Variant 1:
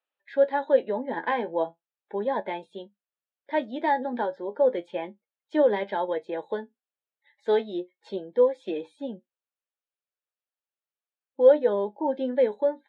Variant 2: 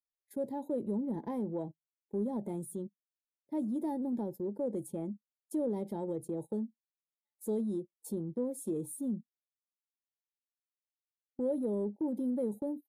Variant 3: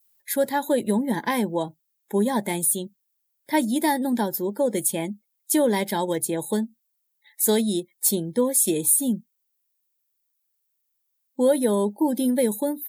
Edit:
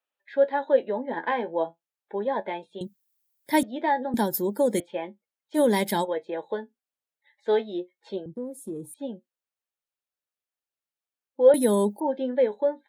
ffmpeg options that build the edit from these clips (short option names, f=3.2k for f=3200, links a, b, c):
-filter_complex "[2:a]asplit=4[a][b][c][d];[0:a]asplit=6[e][f][g][h][i][j];[e]atrim=end=2.812[k];[a]atrim=start=2.808:end=3.632[l];[f]atrim=start=3.628:end=4.142[m];[b]atrim=start=4.138:end=4.802[n];[g]atrim=start=4.798:end=5.6[o];[c]atrim=start=5.54:end=6.07[p];[h]atrim=start=6.01:end=8.262[q];[1:a]atrim=start=8.258:end=8.942[r];[i]atrim=start=8.938:end=11.542[s];[d]atrim=start=11.538:end=12.002[t];[j]atrim=start=11.998[u];[k][l]acrossfade=d=0.004:c1=hsin:c2=hsin[v];[v][m]acrossfade=d=0.004:c1=hsin:c2=hsin[w];[w][n]acrossfade=d=0.004:c1=hsin:c2=hsin[x];[x][o]acrossfade=d=0.004:c1=hsin:c2=hsin[y];[y][p]acrossfade=d=0.06:c1=tri:c2=tri[z];[z][q]acrossfade=d=0.06:c1=tri:c2=tri[aa];[aa][r]acrossfade=d=0.004:c1=hsin:c2=hsin[ab];[ab][s]acrossfade=d=0.004:c1=hsin:c2=hsin[ac];[ac][t]acrossfade=d=0.004:c1=hsin:c2=hsin[ad];[ad][u]acrossfade=d=0.004:c1=hsin:c2=hsin"